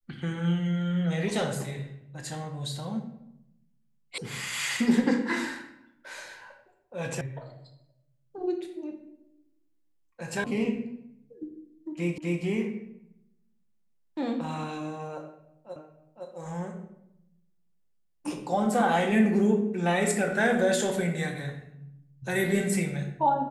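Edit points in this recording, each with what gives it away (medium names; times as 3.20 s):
4.18 s: sound stops dead
7.21 s: sound stops dead
10.44 s: sound stops dead
12.18 s: repeat of the last 0.25 s
15.76 s: repeat of the last 0.51 s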